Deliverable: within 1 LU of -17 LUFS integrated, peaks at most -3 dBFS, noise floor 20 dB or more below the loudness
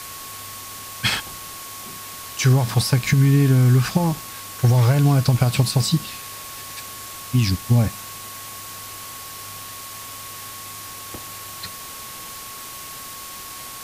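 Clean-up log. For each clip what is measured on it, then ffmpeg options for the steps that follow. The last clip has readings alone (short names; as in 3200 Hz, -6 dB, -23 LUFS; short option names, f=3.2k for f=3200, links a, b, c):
steady tone 1100 Hz; tone level -40 dBFS; noise floor -36 dBFS; noise floor target -40 dBFS; loudness -19.5 LUFS; peak -7.0 dBFS; loudness target -17.0 LUFS
-> -af "bandreject=f=1.1k:w=30"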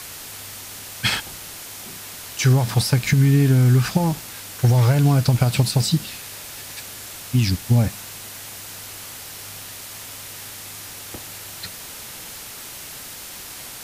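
steady tone none; noise floor -37 dBFS; noise floor target -40 dBFS
-> -af "afftdn=nr=6:nf=-37"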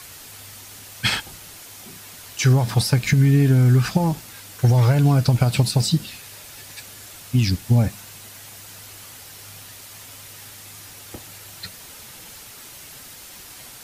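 noise floor -42 dBFS; loudness -19.0 LUFS; peak -7.0 dBFS; loudness target -17.0 LUFS
-> -af "volume=2dB"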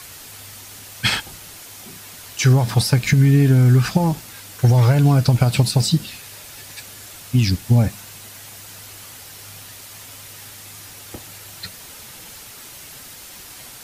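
loudness -17.0 LUFS; peak -5.0 dBFS; noise floor -40 dBFS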